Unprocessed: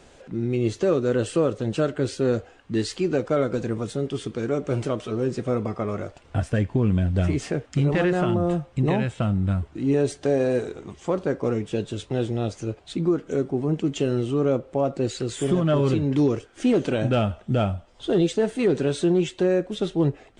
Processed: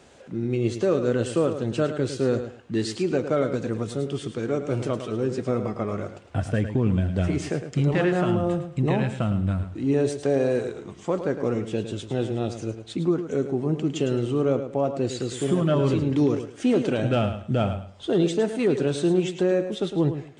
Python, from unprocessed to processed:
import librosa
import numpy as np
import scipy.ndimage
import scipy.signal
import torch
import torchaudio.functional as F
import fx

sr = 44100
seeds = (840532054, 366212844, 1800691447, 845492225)

p1 = scipy.signal.sosfilt(scipy.signal.butter(2, 72.0, 'highpass', fs=sr, output='sos'), x)
p2 = p1 + fx.echo_feedback(p1, sr, ms=107, feedback_pct=23, wet_db=-10, dry=0)
y = F.gain(torch.from_numpy(p2), -1.0).numpy()